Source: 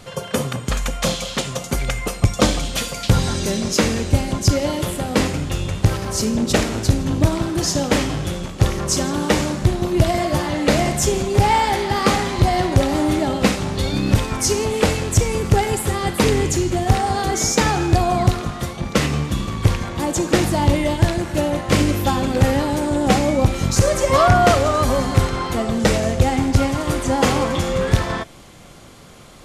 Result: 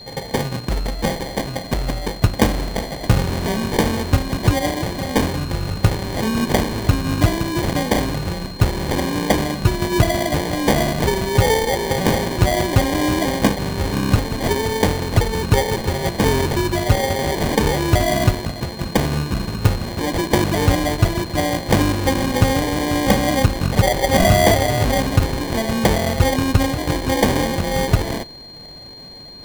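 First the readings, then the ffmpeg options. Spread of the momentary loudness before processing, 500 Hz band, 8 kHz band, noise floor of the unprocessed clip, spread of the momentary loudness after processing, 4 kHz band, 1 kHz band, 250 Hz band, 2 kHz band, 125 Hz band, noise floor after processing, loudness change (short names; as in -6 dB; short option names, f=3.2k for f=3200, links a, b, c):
6 LU, 0.0 dB, -4.0 dB, -34 dBFS, 7 LU, +0.5 dB, -1.5 dB, 0.0 dB, +1.0 dB, 0.0 dB, -33 dBFS, 0.0 dB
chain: -af "acrusher=samples=33:mix=1:aa=0.000001,aeval=exprs='val(0)+0.0141*sin(2*PI*4200*n/s)':c=same"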